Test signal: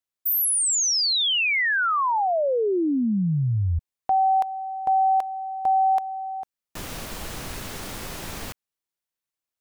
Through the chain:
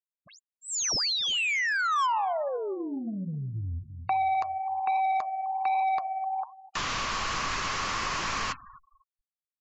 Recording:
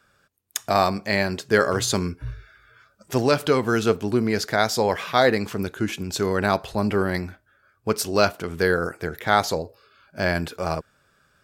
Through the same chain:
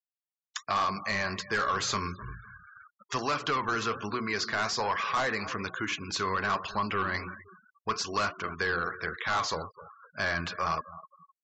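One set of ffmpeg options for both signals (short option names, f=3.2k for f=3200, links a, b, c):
-filter_complex "[0:a]flanger=delay=2.9:depth=9.4:regen=77:speed=1.2:shape=triangular,equalizer=f=1.1k:w=4.4:g=13,acrossover=split=1200[a][b];[b]aeval=exprs='0.299*sin(PI/2*2.82*val(0)/0.299)':c=same[c];[a][c]amix=inputs=2:normalize=0,dynaudnorm=f=140:g=11:m=12.5dB,bandreject=f=60:t=h:w=6,bandreject=f=120:t=h:w=6,bandreject=f=180:t=h:w=6,bandreject=f=240:t=h:w=6,bandreject=f=300:t=h:w=6,bandreject=f=360:t=h:w=6,aresample=16000,asoftclip=type=tanh:threshold=-10.5dB,aresample=44100,asplit=2[d][e];[e]adelay=255,lowpass=f=1.7k:p=1,volume=-17dB,asplit=2[f][g];[g]adelay=255,lowpass=f=1.7k:p=1,volume=0.43,asplit=2[h][i];[i]adelay=255,lowpass=f=1.7k:p=1,volume=0.43,asplit=2[j][k];[k]adelay=255,lowpass=f=1.7k:p=1,volume=0.43[l];[d][f][h][j][l]amix=inputs=5:normalize=0,afftfilt=real='re*gte(hypot(re,im),0.0282)':imag='im*gte(hypot(re,im),0.0282)':win_size=1024:overlap=0.75,adynamicequalizer=threshold=0.0112:dfrequency=3600:dqfactor=3.6:tfrequency=3600:tqfactor=3.6:attack=5:release=100:ratio=0.375:range=3:mode=cutabove:tftype=bell,acrossover=split=720|5700[m][n][o];[m]acompressor=threshold=-23dB:ratio=8[p];[n]acompressor=threshold=-22dB:ratio=2[q];[o]acompressor=threshold=-57dB:ratio=1.5[r];[p][q][r]amix=inputs=3:normalize=0,volume=-8.5dB"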